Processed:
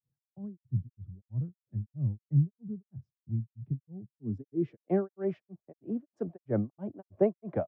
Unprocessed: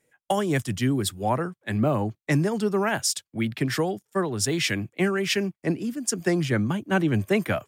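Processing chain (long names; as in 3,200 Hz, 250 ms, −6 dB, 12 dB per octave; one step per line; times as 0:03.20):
low-pass filter sweep 130 Hz → 660 Hz, 0:04.00–0:04.92
granular cloud 255 ms, grains 3.1 per second
level −4.5 dB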